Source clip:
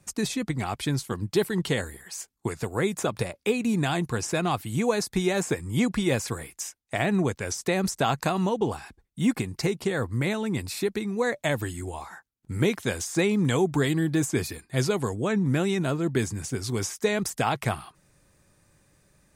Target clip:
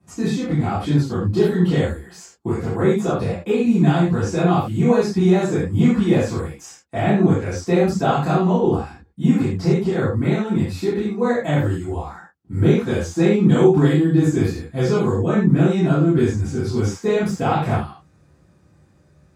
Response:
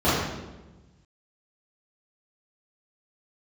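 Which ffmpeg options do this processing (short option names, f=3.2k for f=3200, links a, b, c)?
-filter_complex "[1:a]atrim=start_sample=2205,atrim=end_sample=6174,asetrate=48510,aresample=44100[a];[0:a][a]afir=irnorm=-1:irlink=0,volume=-14.5dB"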